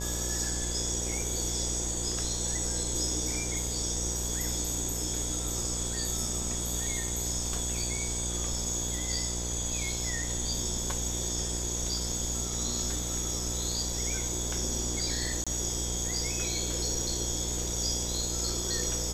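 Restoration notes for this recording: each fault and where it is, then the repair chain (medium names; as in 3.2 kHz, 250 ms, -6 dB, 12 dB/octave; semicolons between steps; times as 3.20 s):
buzz 60 Hz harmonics 17 -36 dBFS
15.44–15.47 s: dropout 26 ms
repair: de-hum 60 Hz, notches 17; interpolate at 15.44 s, 26 ms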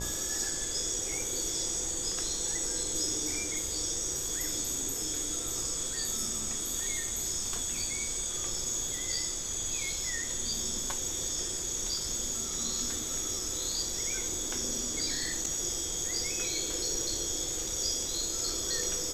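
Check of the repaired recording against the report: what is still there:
nothing left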